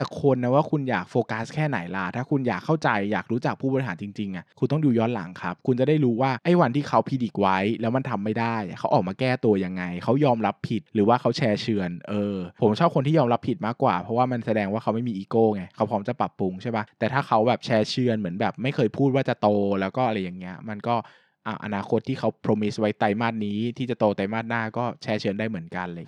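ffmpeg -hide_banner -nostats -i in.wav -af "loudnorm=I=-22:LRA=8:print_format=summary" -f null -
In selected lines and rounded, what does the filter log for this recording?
Input Integrated:    -24.8 LUFS
Input True Peak:      -5.1 dBTP
Input LRA:             3.2 LU
Input Threshold:     -34.9 LUFS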